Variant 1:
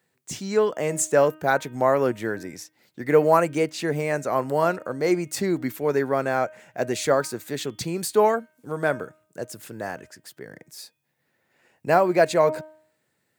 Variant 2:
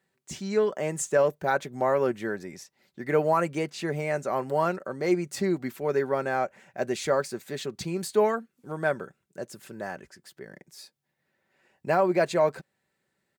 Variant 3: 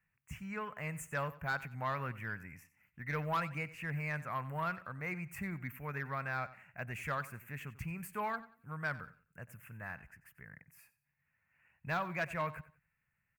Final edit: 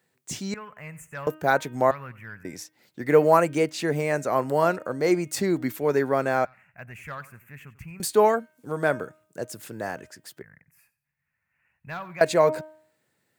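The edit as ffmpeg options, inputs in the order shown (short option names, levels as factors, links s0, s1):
-filter_complex "[2:a]asplit=4[s0][s1][s2][s3];[0:a]asplit=5[s4][s5][s6][s7][s8];[s4]atrim=end=0.542[s9];[s0]atrim=start=0.538:end=1.272[s10];[s5]atrim=start=1.268:end=1.912[s11];[s1]atrim=start=1.908:end=2.452[s12];[s6]atrim=start=2.448:end=6.452[s13];[s2]atrim=start=6.448:end=8.002[s14];[s7]atrim=start=7.998:end=10.422[s15];[s3]atrim=start=10.418:end=12.212[s16];[s8]atrim=start=12.208[s17];[s9][s10]acrossfade=d=0.004:c1=hsin:c2=hsin[s18];[s18][s11]acrossfade=d=0.004:c1=hsin:c2=hsin[s19];[s19][s12]acrossfade=d=0.004:c1=hsin:c2=hsin[s20];[s20][s13]acrossfade=d=0.004:c1=hsin:c2=hsin[s21];[s21][s14]acrossfade=d=0.004:c1=hsin:c2=hsin[s22];[s22][s15]acrossfade=d=0.004:c1=hsin:c2=hsin[s23];[s23][s16]acrossfade=d=0.004:c1=hsin:c2=hsin[s24];[s24][s17]acrossfade=d=0.004:c1=hsin:c2=hsin"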